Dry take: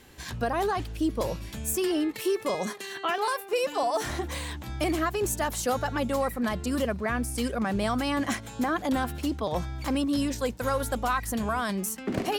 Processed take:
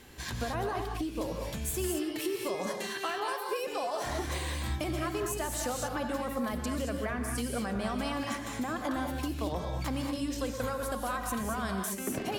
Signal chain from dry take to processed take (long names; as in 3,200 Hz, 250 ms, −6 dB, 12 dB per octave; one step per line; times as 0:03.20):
downward compressor, threshold −32 dBFS, peak gain reduction 9.5 dB
reverb whose tail is shaped and stops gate 250 ms rising, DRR 2.5 dB